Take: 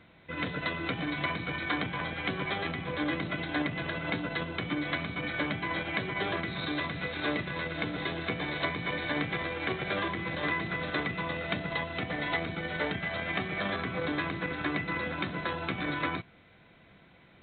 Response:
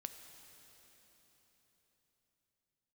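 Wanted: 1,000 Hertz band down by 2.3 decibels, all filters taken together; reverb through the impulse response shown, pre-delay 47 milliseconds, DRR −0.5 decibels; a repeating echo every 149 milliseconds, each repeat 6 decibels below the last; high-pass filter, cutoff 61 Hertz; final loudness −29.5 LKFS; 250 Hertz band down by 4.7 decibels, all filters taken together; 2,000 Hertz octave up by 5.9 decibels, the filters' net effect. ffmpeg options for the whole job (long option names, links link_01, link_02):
-filter_complex "[0:a]highpass=61,equalizer=frequency=250:width_type=o:gain=-6.5,equalizer=frequency=1000:width_type=o:gain=-5,equalizer=frequency=2000:width_type=o:gain=8,aecho=1:1:149|298|447|596|745|894:0.501|0.251|0.125|0.0626|0.0313|0.0157,asplit=2[link_01][link_02];[1:a]atrim=start_sample=2205,adelay=47[link_03];[link_02][link_03]afir=irnorm=-1:irlink=0,volume=4dB[link_04];[link_01][link_04]amix=inputs=2:normalize=0,volume=-5dB"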